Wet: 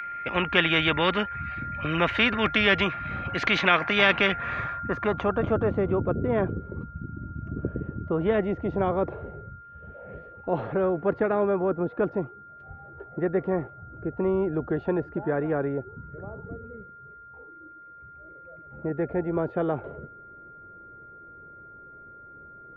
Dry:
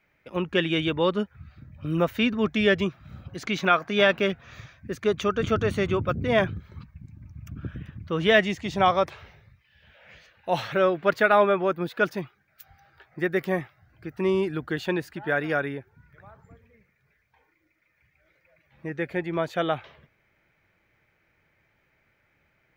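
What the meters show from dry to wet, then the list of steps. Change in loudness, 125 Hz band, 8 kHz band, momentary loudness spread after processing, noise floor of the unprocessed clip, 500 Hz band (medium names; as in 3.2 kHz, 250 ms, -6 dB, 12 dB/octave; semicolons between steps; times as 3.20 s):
-1.0 dB, +1.0 dB, no reading, 21 LU, -69 dBFS, -1.5 dB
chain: whistle 1.4 kHz -38 dBFS; low-pass sweep 2.2 kHz -> 430 Hz, 4.23–5.82 s; spectrum-flattening compressor 2:1; trim -2 dB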